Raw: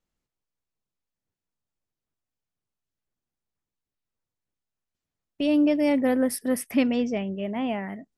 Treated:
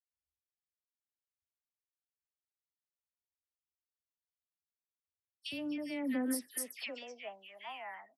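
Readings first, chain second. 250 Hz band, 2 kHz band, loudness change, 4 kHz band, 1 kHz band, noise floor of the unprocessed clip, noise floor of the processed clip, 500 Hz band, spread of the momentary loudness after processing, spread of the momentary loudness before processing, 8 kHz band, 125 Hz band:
-16.0 dB, -9.5 dB, -14.5 dB, -7.0 dB, -12.5 dB, under -85 dBFS, under -85 dBFS, -18.5 dB, 13 LU, 8 LU, -5.0 dB, no reading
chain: amplifier tone stack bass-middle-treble 5-5-5; phase dispersion lows, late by 121 ms, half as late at 2.3 kHz; compression 6:1, threshold -44 dBFS, peak gain reduction 11 dB; high-pass sweep 67 Hz -> 870 Hz, 4.91–7.48 s; three bands expanded up and down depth 70%; trim +6 dB

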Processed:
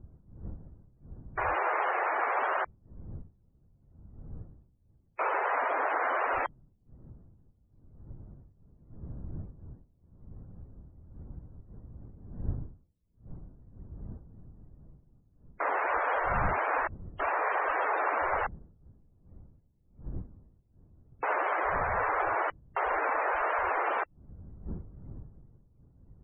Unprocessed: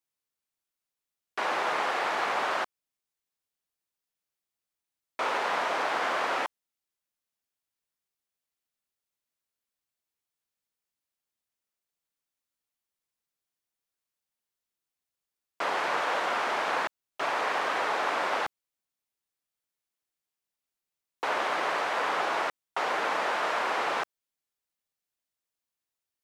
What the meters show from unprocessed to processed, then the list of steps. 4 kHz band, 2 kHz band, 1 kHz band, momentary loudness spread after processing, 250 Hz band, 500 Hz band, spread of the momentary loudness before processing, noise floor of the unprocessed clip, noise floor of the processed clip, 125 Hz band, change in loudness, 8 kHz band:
under -15 dB, -1.5 dB, 0.0 dB, 20 LU, -0.5 dB, 0.0 dB, 6 LU, under -85 dBFS, -67 dBFS, no reading, -1.5 dB, under -30 dB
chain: wind noise 110 Hz -45 dBFS; loudest bins only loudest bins 64

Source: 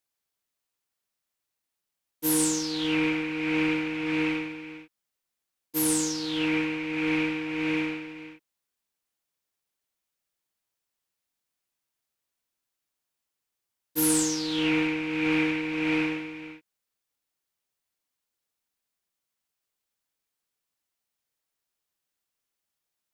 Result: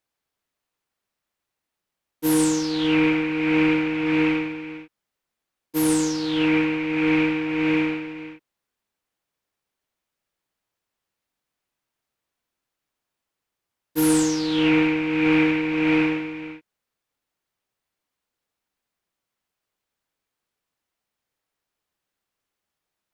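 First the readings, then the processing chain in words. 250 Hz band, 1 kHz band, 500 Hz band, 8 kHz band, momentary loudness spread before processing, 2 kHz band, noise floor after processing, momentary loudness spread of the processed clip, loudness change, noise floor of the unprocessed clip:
+7.0 dB, +6.5 dB, +7.0 dB, -2.0 dB, 12 LU, +4.0 dB, -85 dBFS, 13 LU, +5.0 dB, -85 dBFS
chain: treble shelf 3.7 kHz -10.5 dB; trim +7 dB

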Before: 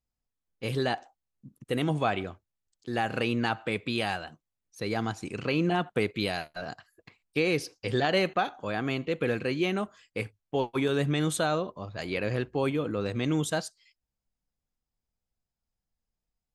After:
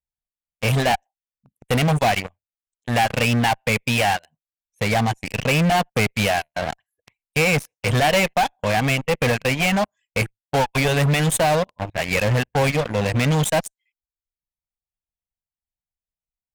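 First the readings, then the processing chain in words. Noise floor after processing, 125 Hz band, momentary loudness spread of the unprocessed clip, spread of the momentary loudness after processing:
under -85 dBFS, +12.0 dB, 10 LU, 8 LU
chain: reverb removal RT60 0.76 s; Chebyshev shaper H 3 -14 dB, 5 -43 dB, 6 -31 dB, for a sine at -11 dBFS; static phaser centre 1.3 kHz, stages 6; in parallel at -3 dB: fuzz box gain 44 dB, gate -49 dBFS

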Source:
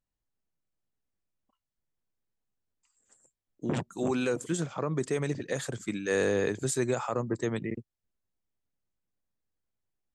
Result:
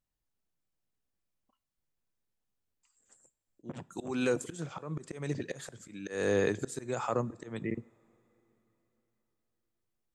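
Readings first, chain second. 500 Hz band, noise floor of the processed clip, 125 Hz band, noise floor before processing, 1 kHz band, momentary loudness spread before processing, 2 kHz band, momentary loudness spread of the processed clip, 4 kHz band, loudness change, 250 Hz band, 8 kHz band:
-3.5 dB, under -85 dBFS, -5.0 dB, under -85 dBFS, -2.5 dB, 7 LU, -4.0 dB, 15 LU, -5.0 dB, -4.0 dB, -4.5 dB, -7.5 dB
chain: slow attack 254 ms; two-slope reverb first 0.44 s, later 3.9 s, from -18 dB, DRR 18.5 dB

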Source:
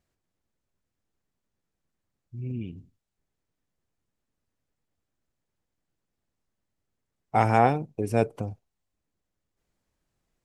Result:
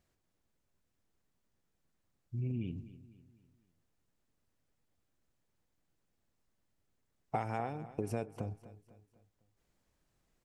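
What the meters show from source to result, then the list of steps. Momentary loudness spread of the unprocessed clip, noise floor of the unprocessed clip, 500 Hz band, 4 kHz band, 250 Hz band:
17 LU, -83 dBFS, -14.0 dB, -12.5 dB, -10.5 dB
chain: compression 16:1, threshold -33 dBFS, peak gain reduction 20 dB; feedback delay 251 ms, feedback 44%, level -16 dB; trim +1 dB

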